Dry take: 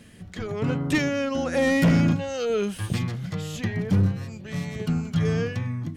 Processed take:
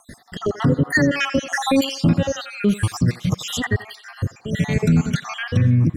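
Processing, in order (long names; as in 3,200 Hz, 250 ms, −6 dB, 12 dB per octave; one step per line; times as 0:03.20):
time-frequency cells dropped at random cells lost 64%
rotating-speaker cabinet horn 6 Hz, later 0.6 Hz, at 0:00.75
feedback echo with a band-pass in the loop 85 ms, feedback 55%, band-pass 1,300 Hz, level −12 dB
boost into a limiter +23 dB
level −7.5 dB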